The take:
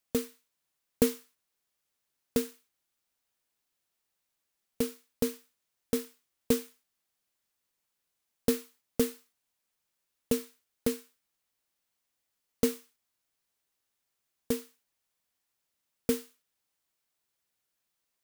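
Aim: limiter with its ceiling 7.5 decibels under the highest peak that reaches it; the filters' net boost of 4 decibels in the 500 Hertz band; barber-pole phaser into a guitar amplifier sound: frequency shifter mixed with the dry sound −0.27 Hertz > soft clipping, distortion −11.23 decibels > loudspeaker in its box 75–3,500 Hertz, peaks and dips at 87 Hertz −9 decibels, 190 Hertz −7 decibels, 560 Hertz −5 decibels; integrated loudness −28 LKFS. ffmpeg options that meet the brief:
ffmpeg -i in.wav -filter_complex "[0:a]equalizer=frequency=500:width_type=o:gain=6,alimiter=limit=-13.5dB:level=0:latency=1,asplit=2[link_01][link_02];[link_02]afreqshift=-0.27[link_03];[link_01][link_03]amix=inputs=2:normalize=1,asoftclip=threshold=-26.5dB,highpass=75,equalizer=frequency=87:width_type=q:width=4:gain=-9,equalizer=frequency=190:width_type=q:width=4:gain=-7,equalizer=frequency=560:width_type=q:width=4:gain=-5,lowpass=frequency=3500:width=0.5412,lowpass=frequency=3500:width=1.3066,volume=14dB" out.wav

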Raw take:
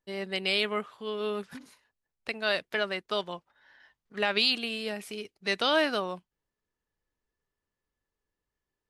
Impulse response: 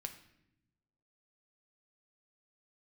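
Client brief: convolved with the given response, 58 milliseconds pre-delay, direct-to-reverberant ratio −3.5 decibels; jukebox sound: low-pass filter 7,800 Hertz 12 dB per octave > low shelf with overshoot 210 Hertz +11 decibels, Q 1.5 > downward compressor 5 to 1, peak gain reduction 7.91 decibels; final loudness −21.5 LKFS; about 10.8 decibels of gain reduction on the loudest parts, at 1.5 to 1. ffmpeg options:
-filter_complex "[0:a]acompressor=threshold=-51dB:ratio=1.5,asplit=2[link_01][link_02];[1:a]atrim=start_sample=2205,adelay=58[link_03];[link_02][link_03]afir=irnorm=-1:irlink=0,volume=6dB[link_04];[link_01][link_04]amix=inputs=2:normalize=0,lowpass=7800,lowshelf=frequency=210:width_type=q:width=1.5:gain=11,acompressor=threshold=-35dB:ratio=5,volume=18dB"

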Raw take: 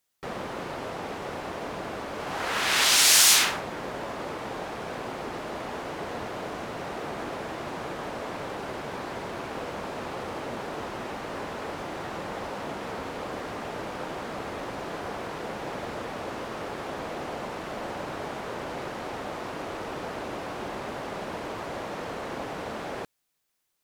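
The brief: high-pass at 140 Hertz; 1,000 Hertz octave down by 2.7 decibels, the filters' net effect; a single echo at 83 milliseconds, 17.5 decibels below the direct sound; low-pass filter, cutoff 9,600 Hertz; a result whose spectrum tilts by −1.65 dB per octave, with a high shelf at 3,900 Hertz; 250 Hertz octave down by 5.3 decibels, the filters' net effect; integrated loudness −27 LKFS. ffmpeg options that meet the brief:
ffmpeg -i in.wav -af "highpass=140,lowpass=9600,equalizer=frequency=250:width_type=o:gain=-6.5,equalizer=frequency=1000:width_type=o:gain=-3.5,highshelf=frequency=3900:gain=4,aecho=1:1:83:0.133,volume=1.5dB" out.wav

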